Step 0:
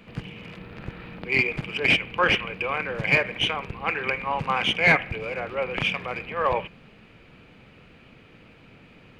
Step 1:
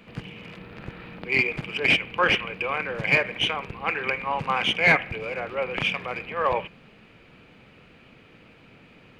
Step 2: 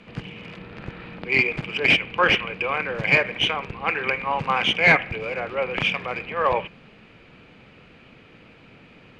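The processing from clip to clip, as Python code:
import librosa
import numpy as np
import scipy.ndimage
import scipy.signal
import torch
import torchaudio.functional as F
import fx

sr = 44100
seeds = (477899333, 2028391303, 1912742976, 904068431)

y1 = fx.low_shelf(x, sr, hz=120.0, db=-5.0)
y2 = scipy.signal.sosfilt(scipy.signal.butter(2, 7700.0, 'lowpass', fs=sr, output='sos'), y1)
y2 = y2 * 10.0 ** (2.5 / 20.0)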